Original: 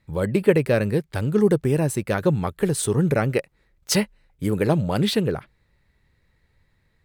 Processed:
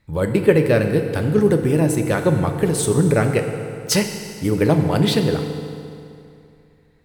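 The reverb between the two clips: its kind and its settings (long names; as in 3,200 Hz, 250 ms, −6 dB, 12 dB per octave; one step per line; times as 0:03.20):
feedback delay network reverb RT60 2.6 s, high-frequency decay 0.8×, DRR 5 dB
level +2.5 dB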